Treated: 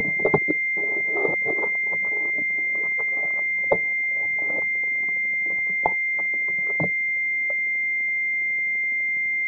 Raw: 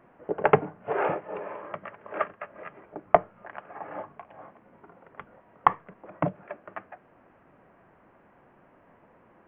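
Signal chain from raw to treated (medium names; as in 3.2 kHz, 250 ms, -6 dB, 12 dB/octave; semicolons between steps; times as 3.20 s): slices played last to first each 192 ms, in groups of 4; formant shift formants -4 st; in parallel at -1 dB: compression, threshold -44 dBFS, peak gain reduction 29 dB; on the sum: square tremolo 12 Hz, depth 60%, duty 10%; class-D stage that switches slowly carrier 2.1 kHz; trim +6 dB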